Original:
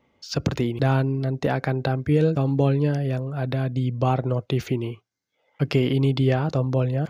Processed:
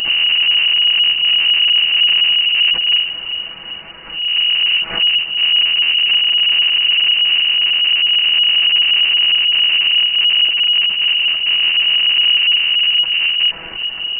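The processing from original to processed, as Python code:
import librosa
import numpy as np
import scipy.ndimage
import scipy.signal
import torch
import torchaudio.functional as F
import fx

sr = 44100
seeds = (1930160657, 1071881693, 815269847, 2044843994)

p1 = x[::-1].copy()
p2 = scipy.signal.sosfilt(scipy.signal.butter(2, 160.0, 'highpass', fs=sr, output='sos'), p1)
p3 = fx.peak_eq(p2, sr, hz=540.0, db=7.5, octaves=0.82)
p4 = fx.whisperise(p3, sr, seeds[0])
p5 = scipy.signal.sosfilt(scipy.signal.cheby2(4, 80, [380.0, 1800.0], 'bandstop', fs=sr, output='sos'), p4)
p6 = fx.power_curve(p5, sr, exponent=0.35)
p7 = fx.stretch_grains(p6, sr, factor=2.0, grain_ms=25.0)
p8 = fx.quant_dither(p7, sr, seeds[1], bits=8, dither='triangular')
p9 = p7 + (p8 * librosa.db_to_amplitude(-8.0))
p10 = fx.echo_feedback(p9, sr, ms=391, feedback_pct=39, wet_db=-17.5)
p11 = fx.power_curve(p10, sr, exponent=0.5)
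p12 = fx.freq_invert(p11, sr, carrier_hz=2900)
p13 = fx.pre_swell(p12, sr, db_per_s=100.0)
y = p13 * librosa.db_to_amplitude(8.0)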